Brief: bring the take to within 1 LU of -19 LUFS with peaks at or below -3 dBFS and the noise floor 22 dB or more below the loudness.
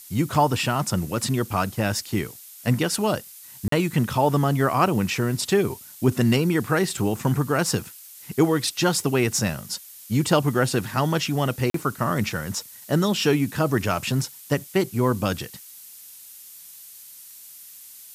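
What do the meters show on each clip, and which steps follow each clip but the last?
dropouts 2; longest dropout 43 ms; noise floor -45 dBFS; noise floor target -46 dBFS; loudness -23.5 LUFS; peak -6.0 dBFS; loudness target -19.0 LUFS
-> interpolate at 3.68/11.7, 43 ms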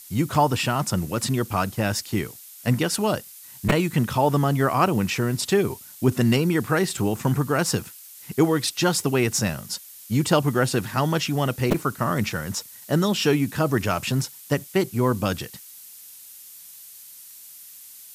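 dropouts 0; noise floor -45 dBFS; noise floor target -46 dBFS
-> denoiser 6 dB, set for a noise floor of -45 dBFS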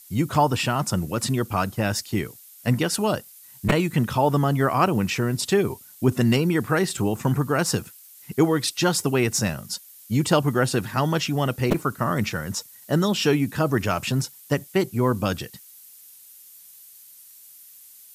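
noise floor -48 dBFS; loudness -23.5 LUFS; peak -4.0 dBFS; loudness target -19.0 LUFS
-> gain +4.5 dB; limiter -3 dBFS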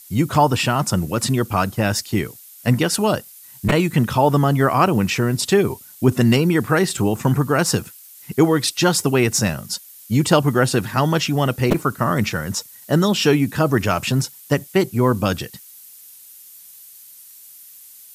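loudness -19.0 LUFS; peak -3.0 dBFS; noise floor -44 dBFS

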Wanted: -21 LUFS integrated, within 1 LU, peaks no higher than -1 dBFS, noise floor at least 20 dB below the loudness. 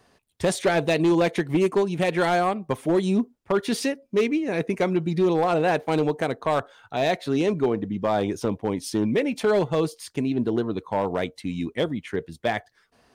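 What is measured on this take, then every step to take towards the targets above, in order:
clipped 1.5%; flat tops at -15.0 dBFS; loudness -24.5 LUFS; peak -15.0 dBFS; loudness target -21.0 LUFS
-> clip repair -15 dBFS; gain +3.5 dB

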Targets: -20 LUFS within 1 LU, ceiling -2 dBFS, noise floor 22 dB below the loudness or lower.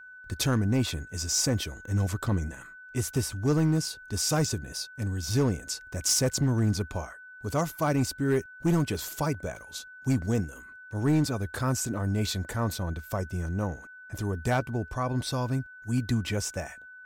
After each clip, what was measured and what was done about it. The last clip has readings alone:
clipped 0.8%; flat tops at -18.5 dBFS; steady tone 1500 Hz; tone level -45 dBFS; loudness -29.0 LUFS; peak -18.5 dBFS; loudness target -20.0 LUFS
-> clip repair -18.5 dBFS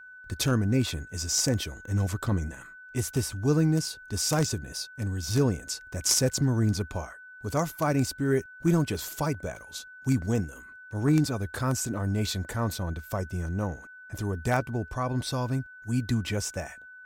clipped 0.0%; steady tone 1500 Hz; tone level -45 dBFS
-> notch 1500 Hz, Q 30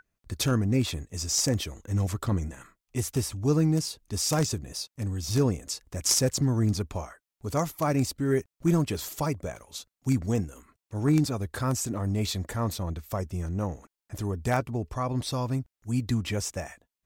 steady tone none; loudness -28.5 LUFS; peak -9.5 dBFS; loudness target -20.0 LUFS
-> gain +8.5 dB; limiter -2 dBFS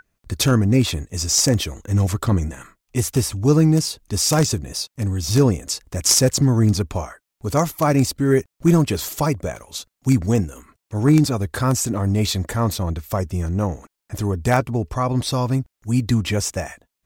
loudness -20.0 LUFS; peak -2.0 dBFS; noise floor -81 dBFS

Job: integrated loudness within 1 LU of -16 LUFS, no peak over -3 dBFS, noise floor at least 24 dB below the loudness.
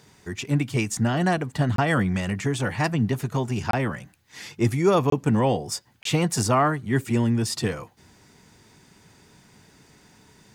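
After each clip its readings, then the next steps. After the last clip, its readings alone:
dropouts 4; longest dropout 23 ms; loudness -24.0 LUFS; peak -8.0 dBFS; loudness target -16.0 LUFS
-> interpolate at 1.76/3.71/5.1/6.03, 23 ms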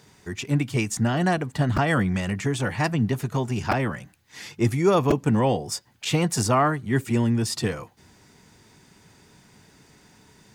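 dropouts 0; loudness -24.0 LUFS; peak -8.0 dBFS; loudness target -16.0 LUFS
-> gain +8 dB; limiter -3 dBFS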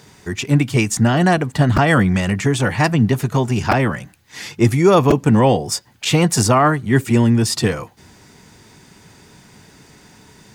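loudness -16.5 LUFS; peak -3.0 dBFS; noise floor -50 dBFS

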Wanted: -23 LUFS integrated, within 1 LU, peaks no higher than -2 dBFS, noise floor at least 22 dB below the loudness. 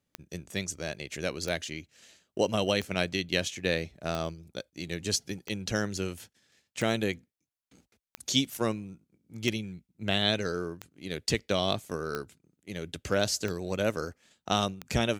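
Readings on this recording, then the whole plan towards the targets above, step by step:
clicks 12; loudness -31.5 LUFS; peak -8.5 dBFS; loudness target -23.0 LUFS
-> de-click; gain +8.5 dB; limiter -2 dBFS

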